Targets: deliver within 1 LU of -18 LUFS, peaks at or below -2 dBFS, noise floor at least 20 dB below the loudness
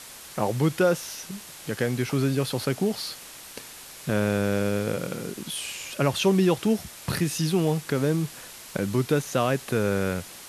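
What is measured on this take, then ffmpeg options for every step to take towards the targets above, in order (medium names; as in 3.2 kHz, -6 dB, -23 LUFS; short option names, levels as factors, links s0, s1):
noise floor -44 dBFS; noise floor target -46 dBFS; loudness -26.0 LUFS; peak level -9.0 dBFS; loudness target -18.0 LUFS
-> -af "afftdn=nr=6:nf=-44"
-af "volume=2.51,alimiter=limit=0.794:level=0:latency=1"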